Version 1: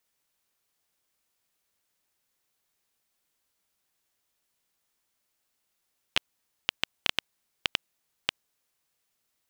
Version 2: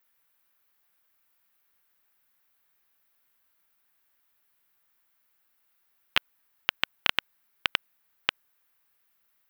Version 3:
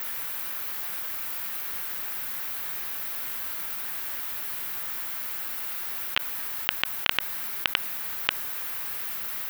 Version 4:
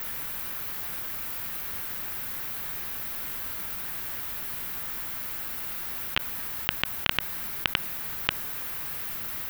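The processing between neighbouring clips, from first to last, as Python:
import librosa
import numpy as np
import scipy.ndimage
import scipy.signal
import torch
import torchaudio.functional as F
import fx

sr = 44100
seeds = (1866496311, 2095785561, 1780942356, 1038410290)

y1 = fx.curve_eq(x, sr, hz=(550.0, 1500.0, 7500.0, 16000.0), db=(0, 8, -6, 11))
y2 = fx.env_flatten(y1, sr, amount_pct=100)
y2 = F.gain(torch.from_numpy(y2), -2.0).numpy()
y3 = fx.low_shelf(y2, sr, hz=300.0, db=11.5)
y3 = F.gain(torch.from_numpy(y3), -1.5).numpy()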